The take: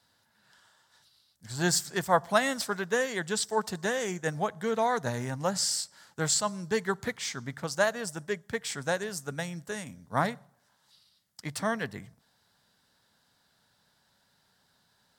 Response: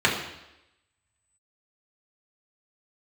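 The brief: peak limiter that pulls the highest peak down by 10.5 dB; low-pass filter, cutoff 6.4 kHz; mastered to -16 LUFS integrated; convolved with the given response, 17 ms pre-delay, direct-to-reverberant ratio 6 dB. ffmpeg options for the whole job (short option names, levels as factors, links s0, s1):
-filter_complex "[0:a]lowpass=6400,alimiter=limit=0.0944:level=0:latency=1,asplit=2[s0][s1];[1:a]atrim=start_sample=2205,adelay=17[s2];[s1][s2]afir=irnorm=-1:irlink=0,volume=0.0631[s3];[s0][s3]amix=inputs=2:normalize=0,volume=6.68"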